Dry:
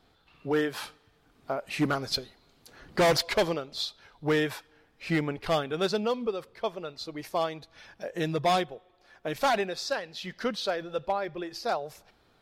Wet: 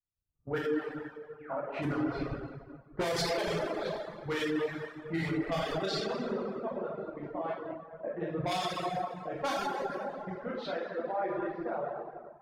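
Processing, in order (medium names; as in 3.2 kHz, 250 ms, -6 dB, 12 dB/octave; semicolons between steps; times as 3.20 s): 10.48–11.17 s: Bessel high-pass 340 Hz, order 2; level held to a coarse grid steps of 12 dB; on a send: feedback echo behind a high-pass 456 ms, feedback 54%, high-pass 1.7 kHz, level -11 dB; 1.38–1.60 s: on the sum: painted sound fall 440–3100 Hz -42 dBFS; level-controlled noise filter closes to 620 Hz, open at -23.5 dBFS; 9.50–10.18 s: time-frequency box 650–9800 Hz -11 dB; plate-style reverb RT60 2.6 s, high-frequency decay 0.65×, DRR -7 dB; in parallel at +1 dB: compression, threshold -31 dBFS, peak gain reduction 14.5 dB; on the sum: reverb removal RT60 0.85 s; peak limiter -19.5 dBFS, peak gain reduction 11 dB; three bands expanded up and down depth 100%; trim -5 dB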